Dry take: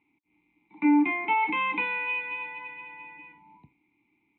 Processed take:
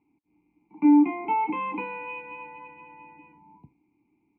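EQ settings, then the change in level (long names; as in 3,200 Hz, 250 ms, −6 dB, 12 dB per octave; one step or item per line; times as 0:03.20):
moving average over 25 samples
+4.5 dB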